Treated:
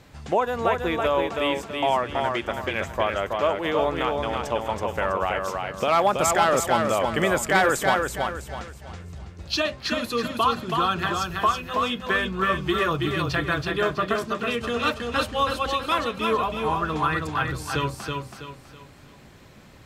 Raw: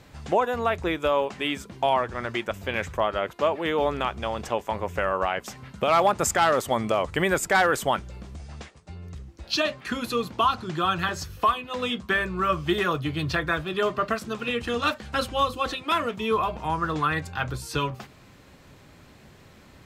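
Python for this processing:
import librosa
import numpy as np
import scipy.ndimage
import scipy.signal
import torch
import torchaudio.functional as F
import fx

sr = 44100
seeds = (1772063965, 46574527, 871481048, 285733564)

y = fx.echo_feedback(x, sr, ms=326, feedback_pct=36, wet_db=-4)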